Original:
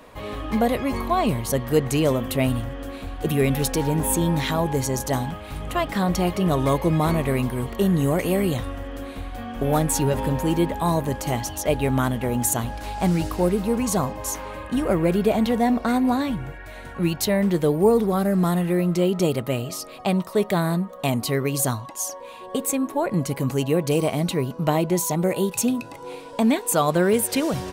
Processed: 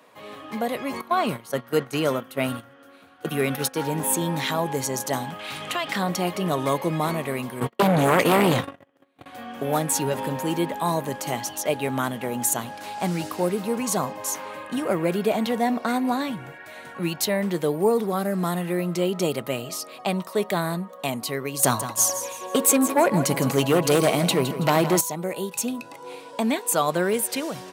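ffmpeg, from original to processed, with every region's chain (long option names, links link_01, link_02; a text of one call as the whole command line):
ffmpeg -i in.wav -filter_complex "[0:a]asettb=1/sr,asplit=3[link_01][link_02][link_03];[link_01]atrim=end=1.014[link_04];[link_02]atrim=start=1.01:end=3.84,asetpts=PTS-STARTPTS,afade=type=in:duration=0.004:curve=qsin,afade=type=out:start_time=2.826:duration=0.004:curve=qsin,bandreject=frequency=7500:width=11,agate=range=-13dB:threshold=-25dB:ratio=16:release=100:detection=peak,equalizer=frequency=1400:width=6.4:gain=11.5[link_05];[link_03]atrim=start=3.836[link_06];[link_04][link_05]acrossfade=duration=0.004:curve1=hsin:curve2=qsin[link_07];[link_07][link_06]acrossfade=duration=0.004:curve1=qsin:curve2=hsin,asettb=1/sr,asplit=3[link_08][link_09][link_10];[link_08]atrim=end=5.394[link_11];[link_09]atrim=start=5.39:end=5.96,asetpts=PTS-STARTPTS,afade=type=in:duration=0.004:curve=qsin,afade=type=out:start_time=0.566:duration=0.004:curve=qsin,equalizer=frequency=3500:width=0.45:gain=10,acompressor=threshold=-22dB:ratio=4:attack=3.2:release=140:knee=1:detection=peak[link_12];[link_10]atrim=start=5.956[link_13];[link_11][link_12]acrossfade=duration=0.004:curve1=hsin:curve2=qsin[link_14];[link_14][link_13]acrossfade=duration=0.004:curve1=qsin:curve2=hsin,asettb=1/sr,asplit=3[link_15][link_16][link_17];[link_15]atrim=end=7.604[link_18];[link_16]atrim=start=7.6:end=9.26,asetpts=PTS-STARTPTS,afade=type=in:duration=0.004:curve=qsin,afade=type=out:start_time=1.656:duration=0.004:curve=qsin,agate=range=-43dB:threshold=-28dB:ratio=16:release=100:detection=peak,bass=frequency=250:gain=1,treble=frequency=4000:gain=-6,aeval=exprs='0.376*sin(PI/2*3.16*val(0)/0.376)':channel_layout=same[link_19];[link_17]atrim=start=9.256[link_20];[link_18][link_19]acrossfade=duration=0.004:curve1=hsin:curve2=qsin[link_21];[link_21][link_20]acrossfade=duration=0.004:curve1=qsin:curve2=hsin,asettb=1/sr,asplit=3[link_22][link_23][link_24];[link_22]atrim=end=21.634[link_25];[link_23]atrim=start=21.63:end=25.01,asetpts=PTS-STARTPTS,afade=type=in:duration=0.004:curve=qsin,afade=type=out:start_time=3.376:duration=0.004:curve=qsin,aeval=exprs='0.398*sin(PI/2*2.24*val(0)/0.398)':channel_layout=same,agate=range=-33dB:threshold=-25dB:ratio=3:release=100:detection=peak,aecho=1:1:163|326|489|652:0.266|0.0958|0.0345|0.0124,atrim=end_sample=149058[link_26];[link_24]atrim=start=25.006[link_27];[link_25][link_26]acrossfade=duration=0.004:curve1=hsin:curve2=qsin[link_28];[link_28][link_27]acrossfade=duration=0.004:curve1=qsin:curve2=hsin,highpass=frequency=130:width=0.5412,highpass=frequency=130:width=1.3066,lowshelf=frequency=400:gain=-7,dynaudnorm=framelen=220:gausssize=7:maxgain=6dB,volume=-5dB" out.wav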